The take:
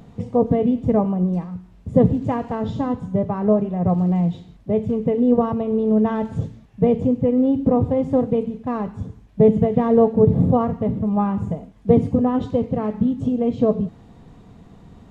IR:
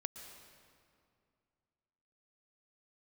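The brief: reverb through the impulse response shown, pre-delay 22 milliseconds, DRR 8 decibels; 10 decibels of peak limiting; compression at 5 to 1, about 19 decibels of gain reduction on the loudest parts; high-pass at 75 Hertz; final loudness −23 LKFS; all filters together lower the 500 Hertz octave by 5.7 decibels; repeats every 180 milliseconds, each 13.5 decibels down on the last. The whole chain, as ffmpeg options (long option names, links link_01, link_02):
-filter_complex "[0:a]highpass=75,equalizer=frequency=500:width_type=o:gain=-6.5,acompressor=threshold=-35dB:ratio=5,alimiter=level_in=8dB:limit=-24dB:level=0:latency=1,volume=-8dB,aecho=1:1:180|360:0.211|0.0444,asplit=2[link_01][link_02];[1:a]atrim=start_sample=2205,adelay=22[link_03];[link_02][link_03]afir=irnorm=-1:irlink=0,volume=-6dB[link_04];[link_01][link_04]amix=inputs=2:normalize=0,volume=16.5dB"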